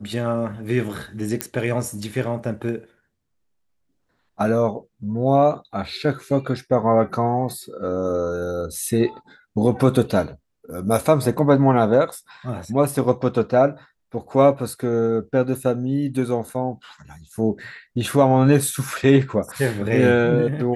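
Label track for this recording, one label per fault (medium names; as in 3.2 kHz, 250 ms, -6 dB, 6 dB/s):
1.410000	1.410000	pop -5 dBFS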